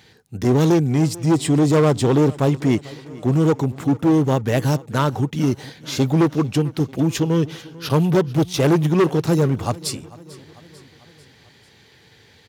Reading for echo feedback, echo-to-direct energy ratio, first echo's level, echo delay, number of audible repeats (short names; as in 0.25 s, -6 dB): 56%, -19.0 dB, -20.5 dB, 0.444 s, 3